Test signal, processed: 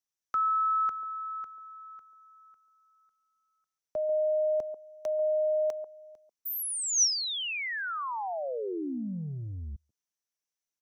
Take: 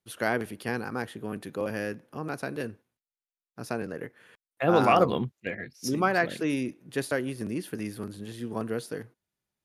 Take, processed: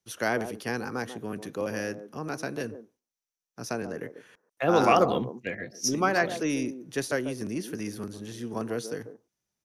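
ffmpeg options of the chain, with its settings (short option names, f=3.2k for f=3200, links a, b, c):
-filter_complex "[0:a]equalizer=f=5.9k:t=o:w=0.29:g=13,acrossover=split=200|1100|4400[a][b][c][d];[a]asoftclip=type=tanh:threshold=-35dB[e];[b]aecho=1:1:141:0.398[f];[e][f][c][d]amix=inputs=4:normalize=0"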